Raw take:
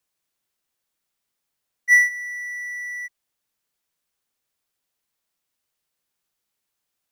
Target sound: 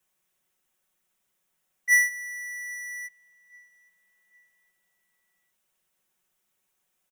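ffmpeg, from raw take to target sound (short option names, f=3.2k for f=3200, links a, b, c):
-filter_complex "[0:a]equalizer=f=4.5k:t=o:w=0.43:g=-9,aecho=1:1:5.4:0.9,asplit=2[a][b];[b]adelay=810,lowpass=f=2.4k:p=1,volume=-22dB,asplit=2[c][d];[d]adelay=810,lowpass=f=2.4k:p=1,volume=0.48,asplit=2[e][f];[f]adelay=810,lowpass=f=2.4k:p=1,volume=0.48[g];[c][e][g]amix=inputs=3:normalize=0[h];[a][h]amix=inputs=2:normalize=0,volume=1.5dB"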